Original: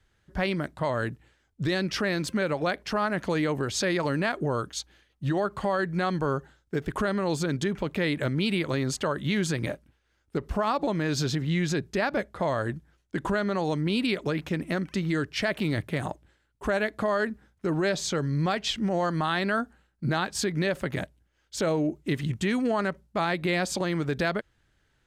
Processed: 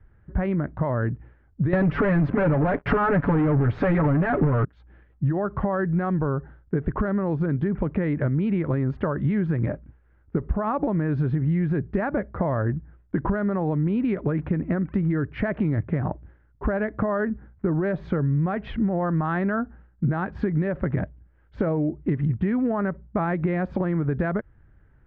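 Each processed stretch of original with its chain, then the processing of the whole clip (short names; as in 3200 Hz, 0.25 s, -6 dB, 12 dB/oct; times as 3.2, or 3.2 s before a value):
1.73–4.65 comb 7 ms, depth 96% + transient shaper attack +7 dB, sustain +3 dB + sample leveller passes 5
whole clip: LPF 1800 Hz 24 dB/oct; low shelf 230 Hz +12 dB; compressor, threshold -25 dBFS; gain +4.5 dB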